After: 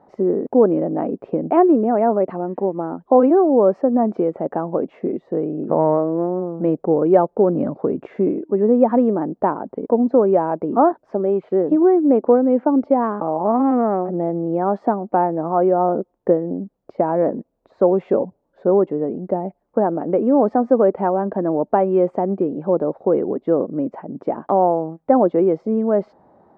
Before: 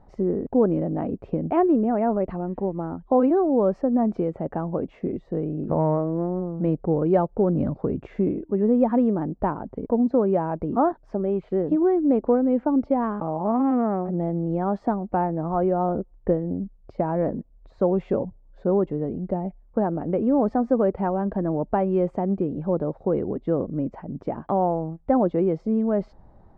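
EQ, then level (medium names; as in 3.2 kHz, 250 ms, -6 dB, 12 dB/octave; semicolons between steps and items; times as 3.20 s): high-pass 290 Hz 12 dB/octave; treble shelf 2.3 kHz -11 dB; +8.0 dB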